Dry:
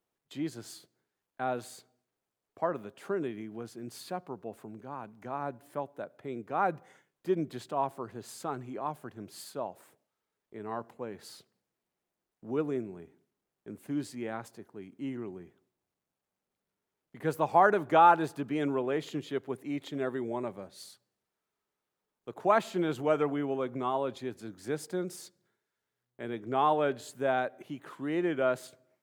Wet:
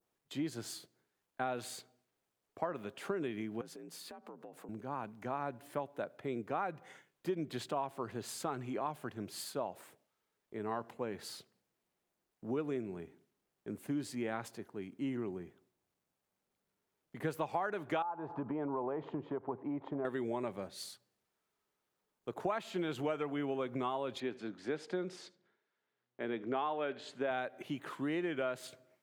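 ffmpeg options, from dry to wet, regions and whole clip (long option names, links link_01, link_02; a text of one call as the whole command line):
ffmpeg -i in.wav -filter_complex "[0:a]asettb=1/sr,asplit=3[link_01][link_02][link_03];[link_01]atrim=end=3.614[link_04];[link_02]atrim=start=3.61:end=4.69,asetpts=PTS-STARTPTS,afade=type=in:duration=0.004:curve=qsin,afade=type=out:start_time=1.076:duration=0.004:curve=qsin,afreqshift=51,acompressor=threshold=-47dB:ratio=20:attack=3.2:release=140:knee=1:detection=peak[link_05];[link_03]atrim=start=4.686[link_06];[link_04][link_05]acrossfade=duration=0.004:curve1=hsin:curve2=qsin[link_07];[link_07][link_06]acrossfade=duration=0.004:curve1=qsin:curve2=hsin,asettb=1/sr,asplit=3[link_08][link_09][link_10];[link_08]atrim=end=18.024[link_11];[link_09]atrim=start=18.02:end=20.05,asetpts=PTS-STARTPTS,afade=type=in:duration=0.004:curve=qsin,afade=type=out:start_time=2.026:duration=0.004:curve=qsin,acompressor=threshold=-36dB:ratio=4:attack=3.2:release=140:knee=1:detection=peak,lowpass=frequency=940:width_type=q:width=3.9[link_12];[link_10]atrim=start=20.046[link_13];[link_11][link_12]acrossfade=duration=0.004:curve1=hsin:curve2=qsin[link_14];[link_14][link_13]acrossfade=duration=0.004:curve1=qsin:curve2=hsin,asettb=1/sr,asplit=3[link_15][link_16][link_17];[link_15]atrim=end=24.204[link_18];[link_16]atrim=start=24.2:end=27.31,asetpts=PTS-STARTPTS,afade=type=in:duration=0.004:curve=qsin,afade=type=out:start_time=3.106:duration=0.004:curve=qsin,highpass=190,lowpass=3800,aecho=1:1:77:0.0708,atrim=end_sample=137151[link_19];[link_17]atrim=start=27.306[link_20];[link_18][link_19]acrossfade=duration=0.004:curve1=hsin:curve2=qsin[link_21];[link_21][link_20]acrossfade=duration=0.004:curve1=qsin:curve2=hsin,adynamicequalizer=threshold=0.00447:dfrequency=2800:dqfactor=0.85:tfrequency=2800:tqfactor=0.85:attack=5:release=100:ratio=0.375:range=3:mode=boostabove:tftype=bell,acompressor=threshold=-34dB:ratio=8,volume=1.5dB" out.wav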